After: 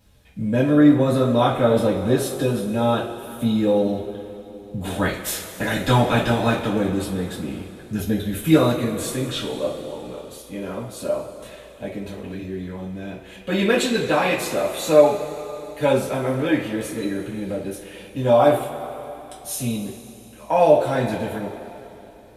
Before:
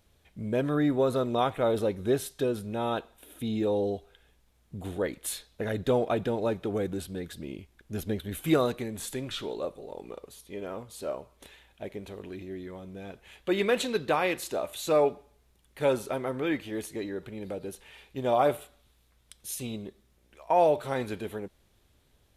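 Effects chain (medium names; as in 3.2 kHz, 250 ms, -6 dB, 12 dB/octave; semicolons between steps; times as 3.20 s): 4.82–6.67 s: spectral peaks clipped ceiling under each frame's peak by 17 dB; two-slope reverb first 0.27 s, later 3.3 s, from -18 dB, DRR -6 dB; trim +1 dB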